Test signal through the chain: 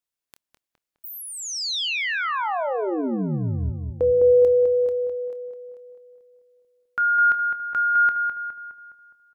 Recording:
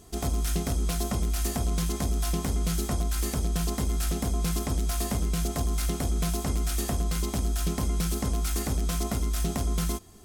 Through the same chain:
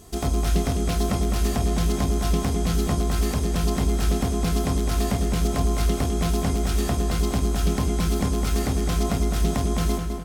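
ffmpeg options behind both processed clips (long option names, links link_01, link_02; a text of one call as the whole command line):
ffmpeg -i in.wav -filter_complex "[0:a]asplit=2[link_01][link_02];[link_02]adelay=26,volume=-13.5dB[link_03];[link_01][link_03]amix=inputs=2:normalize=0,asplit=2[link_04][link_05];[link_05]adelay=207,lowpass=frequency=2400:poles=1,volume=-5dB,asplit=2[link_06][link_07];[link_07]adelay=207,lowpass=frequency=2400:poles=1,volume=0.52,asplit=2[link_08][link_09];[link_09]adelay=207,lowpass=frequency=2400:poles=1,volume=0.52,asplit=2[link_10][link_11];[link_11]adelay=207,lowpass=frequency=2400:poles=1,volume=0.52,asplit=2[link_12][link_13];[link_13]adelay=207,lowpass=frequency=2400:poles=1,volume=0.52,asplit=2[link_14][link_15];[link_15]adelay=207,lowpass=frequency=2400:poles=1,volume=0.52,asplit=2[link_16][link_17];[link_17]adelay=207,lowpass=frequency=2400:poles=1,volume=0.52[link_18];[link_06][link_08][link_10][link_12][link_14][link_16][link_18]amix=inputs=7:normalize=0[link_19];[link_04][link_19]amix=inputs=2:normalize=0,acrossover=split=5300[link_20][link_21];[link_21]acompressor=threshold=-41dB:ratio=4:attack=1:release=60[link_22];[link_20][link_22]amix=inputs=2:normalize=0,volume=4.5dB" out.wav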